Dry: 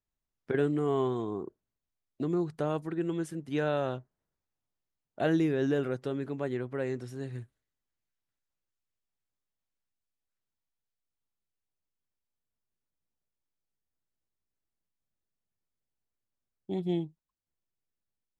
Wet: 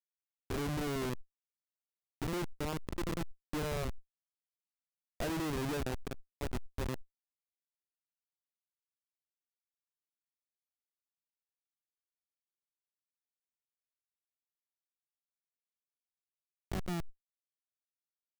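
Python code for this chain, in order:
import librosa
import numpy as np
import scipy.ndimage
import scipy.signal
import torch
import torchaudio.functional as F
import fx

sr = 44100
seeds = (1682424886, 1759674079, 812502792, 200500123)

y = fx.schmitt(x, sr, flips_db=-29.0)
y = fx.sustainer(y, sr, db_per_s=25.0)
y = y * librosa.db_to_amplitude(1.0)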